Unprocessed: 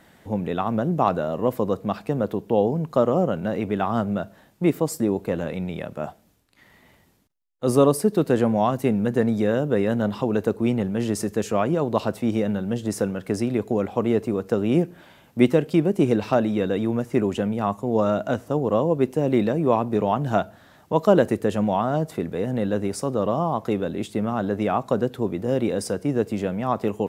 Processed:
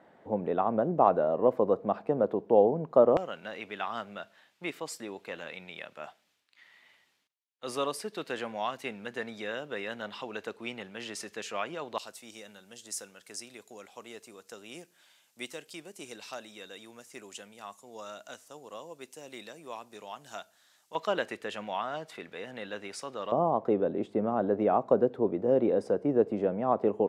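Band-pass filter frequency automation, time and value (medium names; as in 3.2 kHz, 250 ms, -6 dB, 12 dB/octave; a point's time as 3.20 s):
band-pass filter, Q 0.98
600 Hz
from 3.17 s 2.9 kHz
from 11.98 s 7.3 kHz
from 20.95 s 2.7 kHz
from 23.32 s 520 Hz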